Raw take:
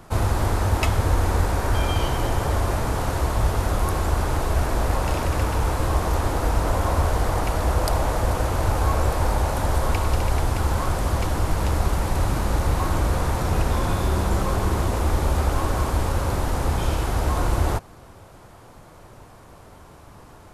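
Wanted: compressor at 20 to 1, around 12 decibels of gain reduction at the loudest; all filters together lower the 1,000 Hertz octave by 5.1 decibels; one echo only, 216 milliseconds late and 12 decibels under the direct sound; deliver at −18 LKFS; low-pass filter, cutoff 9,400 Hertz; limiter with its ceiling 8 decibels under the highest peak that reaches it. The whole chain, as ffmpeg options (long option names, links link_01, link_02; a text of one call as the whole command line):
ffmpeg -i in.wav -af "lowpass=9400,equalizer=frequency=1000:width_type=o:gain=-6.5,acompressor=threshold=-28dB:ratio=20,alimiter=level_in=3dB:limit=-24dB:level=0:latency=1,volume=-3dB,aecho=1:1:216:0.251,volume=19.5dB" out.wav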